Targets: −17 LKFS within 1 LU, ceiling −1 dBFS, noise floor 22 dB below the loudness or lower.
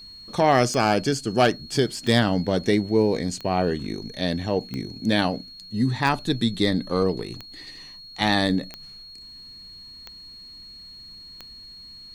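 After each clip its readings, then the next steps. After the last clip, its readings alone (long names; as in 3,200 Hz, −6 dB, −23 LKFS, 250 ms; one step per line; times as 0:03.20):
number of clicks 9; interfering tone 4,300 Hz; level of the tone −41 dBFS; integrated loudness −23.5 LKFS; sample peak −8.5 dBFS; target loudness −17.0 LKFS
→ click removal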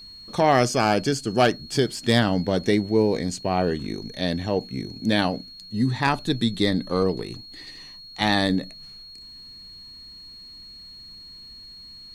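number of clicks 0; interfering tone 4,300 Hz; level of the tone −41 dBFS
→ notch filter 4,300 Hz, Q 30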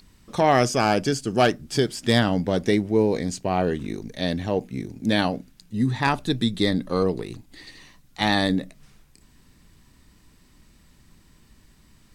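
interfering tone none found; integrated loudness −23.5 LKFS; sample peak −8.0 dBFS; target loudness −17.0 LKFS
→ level +6.5 dB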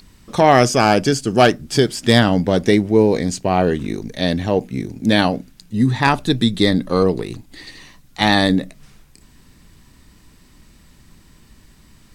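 integrated loudness −17.0 LKFS; sample peak −1.5 dBFS; background noise floor −50 dBFS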